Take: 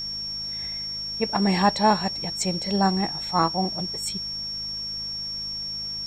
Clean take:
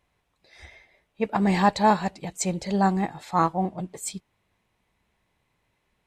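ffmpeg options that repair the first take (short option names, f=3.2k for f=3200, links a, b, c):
-af "bandreject=f=52.6:t=h:w=4,bandreject=f=105.2:t=h:w=4,bandreject=f=157.8:t=h:w=4,bandreject=f=210.4:t=h:w=4,bandreject=f=5.5k:w=30,agate=range=-21dB:threshold=-24dB"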